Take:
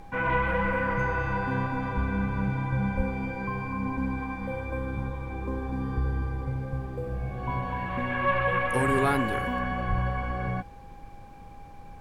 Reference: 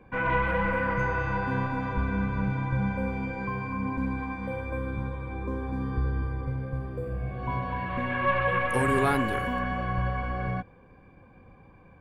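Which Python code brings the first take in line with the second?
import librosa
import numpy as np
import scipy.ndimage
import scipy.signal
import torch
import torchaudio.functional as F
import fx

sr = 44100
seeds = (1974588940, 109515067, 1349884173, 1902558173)

y = fx.notch(x, sr, hz=810.0, q=30.0)
y = fx.highpass(y, sr, hz=140.0, slope=24, at=(2.96, 3.08), fade=0.02)
y = fx.highpass(y, sr, hz=140.0, slope=24, at=(9.89, 10.01), fade=0.02)
y = fx.noise_reduce(y, sr, print_start_s=11.08, print_end_s=11.58, reduce_db=9.0)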